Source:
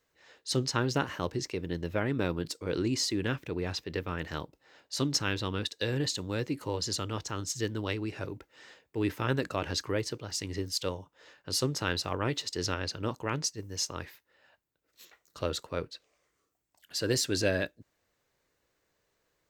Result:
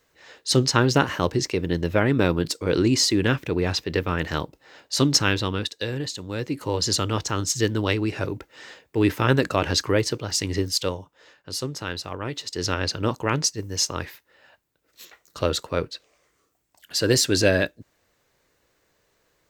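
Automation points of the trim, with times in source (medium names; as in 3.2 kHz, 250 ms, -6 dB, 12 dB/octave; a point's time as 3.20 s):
5.25 s +10 dB
6.12 s 0 dB
6.89 s +10 dB
10.59 s +10 dB
11.56 s 0 dB
12.31 s 0 dB
12.83 s +9 dB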